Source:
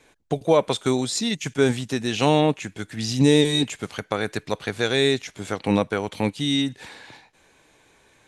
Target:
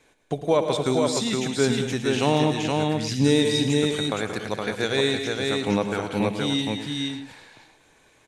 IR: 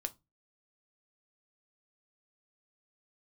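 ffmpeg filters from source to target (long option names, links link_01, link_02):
-filter_complex "[0:a]aecho=1:1:64|180|212|468:0.112|0.224|0.266|0.708,asplit=2[link_01][link_02];[1:a]atrim=start_sample=2205,adelay=106[link_03];[link_02][link_03]afir=irnorm=-1:irlink=0,volume=-9.5dB[link_04];[link_01][link_04]amix=inputs=2:normalize=0,volume=-3dB"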